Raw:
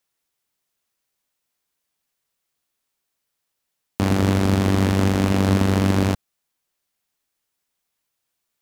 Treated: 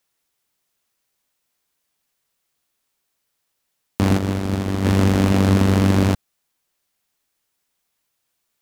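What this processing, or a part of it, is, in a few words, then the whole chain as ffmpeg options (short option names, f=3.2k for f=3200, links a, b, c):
parallel distortion: -filter_complex "[0:a]asplit=3[a][b][c];[a]afade=t=out:st=4.17:d=0.02[d];[b]agate=range=-33dB:threshold=-10dB:ratio=3:detection=peak,afade=t=in:st=4.17:d=0.02,afade=t=out:st=4.84:d=0.02[e];[c]afade=t=in:st=4.84:d=0.02[f];[d][e][f]amix=inputs=3:normalize=0,asplit=2[g][h];[h]asoftclip=type=hard:threshold=-18dB,volume=-5dB[i];[g][i]amix=inputs=2:normalize=0"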